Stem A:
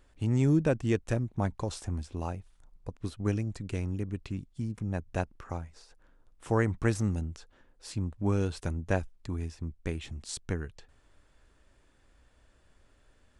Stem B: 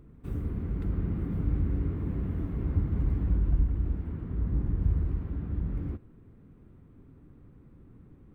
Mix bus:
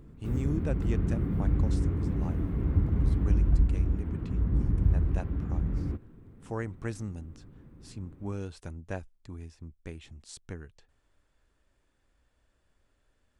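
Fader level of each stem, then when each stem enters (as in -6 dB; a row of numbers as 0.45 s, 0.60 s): -8.0 dB, +2.0 dB; 0.00 s, 0.00 s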